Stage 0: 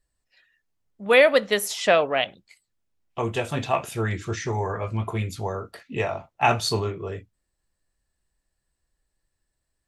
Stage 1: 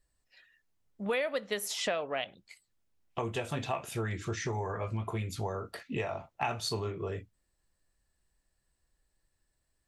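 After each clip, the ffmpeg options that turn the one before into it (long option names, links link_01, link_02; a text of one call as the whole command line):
ffmpeg -i in.wav -af "acompressor=threshold=-32dB:ratio=4" out.wav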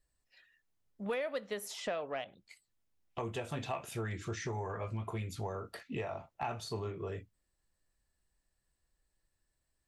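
ffmpeg -i in.wav -filter_complex "[0:a]acrossover=split=1600[link_01][link_02];[link_02]alimiter=level_in=7dB:limit=-24dB:level=0:latency=1:release=275,volume=-7dB[link_03];[link_01][link_03]amix=inputs=2:normalize=0,asoftclip=type=tanh:threshold=-20dB,volume=-3.5dB" out.wav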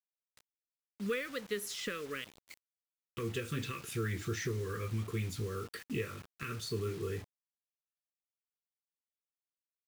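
ffmpeg -i in.wav -af "asuperstop=centerf=760:order=8:qfactor=1.1,acrusher=bits=8:mix=0:aa=0.000001,volume=3dB" out.wav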